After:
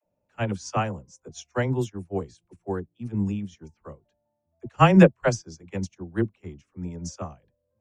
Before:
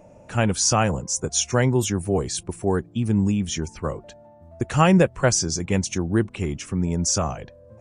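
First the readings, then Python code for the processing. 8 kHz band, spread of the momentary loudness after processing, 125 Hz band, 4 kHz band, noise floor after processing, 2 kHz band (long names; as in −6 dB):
−19.0 dB, 23 LU, −3.5 dB, −11.5 dB, −78 dBFS, −3.0 dB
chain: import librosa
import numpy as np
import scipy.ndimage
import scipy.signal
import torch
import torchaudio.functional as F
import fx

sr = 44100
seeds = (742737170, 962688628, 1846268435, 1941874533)

y = fx.peak_eq(x, sr, hz=10000.0, db=-14.0, octaves=0.86)
y = fx.dispersion(y, sr, late='lows', ms=56.0, hz=350.0)
y = fx.upward_expand(y, sr, threshold_db=-34.0, expansion=2.5)
y = F.gain(torch.from_numpy(y), 3.5).numpy()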